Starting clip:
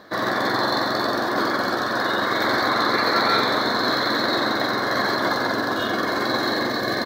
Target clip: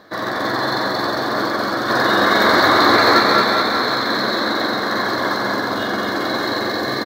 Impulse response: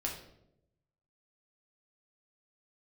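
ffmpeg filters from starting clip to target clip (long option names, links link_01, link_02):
-filter_complex "[0:a]asettb=1/sr,asplit=3[link_01][link_02][link_03];[link_01]atrim=end=1.884[link_04];[link_02]atrim=start=1.88:end=3.2,asetpts=PTS-STARTPTS,afade=type=in:duration=0.004:curve=qsin,afade=type=out:start_time=1.316:duration=0.004:curve=qsin,acontrast=63[link_05];[link_03]atrim=start=3.196[link_06];[link_04][link_05]acrossfade=duration=0.004:curve1=hsin:curve2=qsin[link_07];[link_07][link_06]acrossfade=duration=0.004:curve1=qsin:curve2=hsin,aecho=1:1:220|418|596.2|756.6|900.9:0.631|0.398|0.251|0.158|0.1,asplit=2[link_08][link_09];[1:a]atrim=start_sample=2205,asetrate=52920,aresample=44100[link_10];[link_09][link_10]afir=irnorm=-1:irlink=0,volume=-13.5dB[link_11];[link_08][link_11]amix=inputs=2:normalize=0,volume=-1.5dB"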